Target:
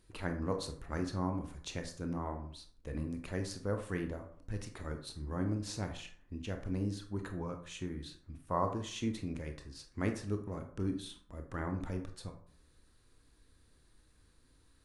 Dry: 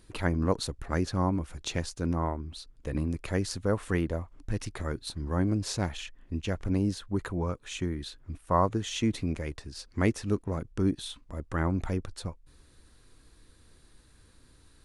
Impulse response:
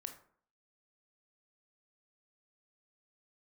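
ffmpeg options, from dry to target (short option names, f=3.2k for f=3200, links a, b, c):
-filter_complex "[1:a]atrim=start_sample=2205,asetrate=43659,aresample=44100[a];[0:a][a]afir=irnorm=-1:irlink=0,volume=-4dB"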